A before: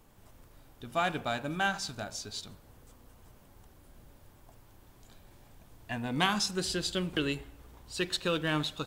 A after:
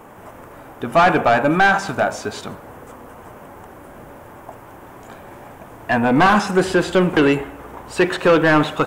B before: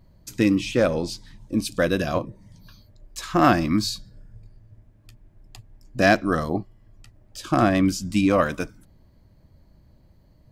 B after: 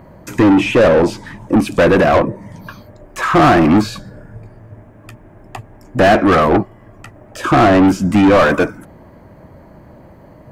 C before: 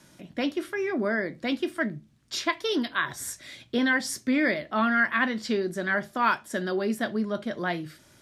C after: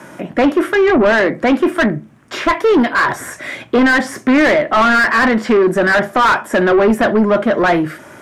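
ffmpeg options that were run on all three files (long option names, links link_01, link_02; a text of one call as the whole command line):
ffmpeg -i in.wav -filter_complex "[0:a]acrossover=split=3500[link_01][link_02];[link_02]acompressor=threshold=-40dB:ratio=4:attack=1:release=60[link_03];[link_01][link_03]amix=inputs=2:normalize=0,equalizer=frequency=4200:width_type=o:width=1.2:gain=-15,asplit=2[link_04][link_05];[link_05]highpass=frequency=720:poles=1,volume=32dB,asoftclip=type=tanh:threshold=-5dB[link_06];[link_04][link_06]amix=inputs=2:normalize=0,lowpass=frequency=1600:poles=1,volume=-6dB,volume=3dB" out.wav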